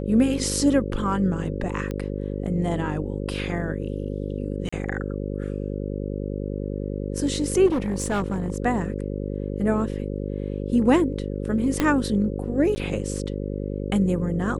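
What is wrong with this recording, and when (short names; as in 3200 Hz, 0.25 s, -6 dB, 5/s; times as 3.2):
buzz 50 Hz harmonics 11 -29 dBFS
1.91 pop -18 dBFS
4.69–4.72 gap 35 ms
7.66–8.58 clipped -20 dBFS
11.8 pop -7 dBFS
12.75–12.76 gap 10 ms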